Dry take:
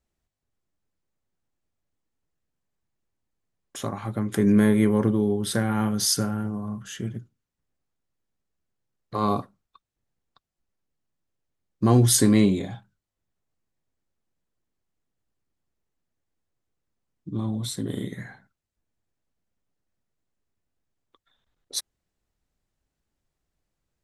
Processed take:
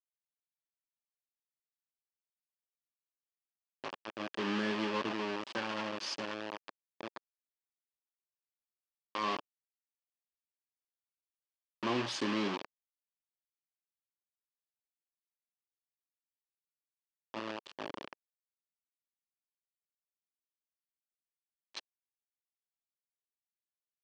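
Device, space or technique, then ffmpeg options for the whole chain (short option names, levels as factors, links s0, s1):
hand-held game console: -af "acrusher=bits=3:mix=0:aa=0.000001,highpass=450,equalizer=f=460:t=q:w=4:g=-8,equalizer=f=730:t=q:w=4:g=-8,equalizer=f=1400:t=q:w=4:g=-7,equalizer=f=2100:t=q:w=4:g=-7,equalizer=f=3800:t=q:w=4:g=-7,lowpass=f=4100:w=0.5412,lowpass=f=4100:w=1.3066,volume=0.562"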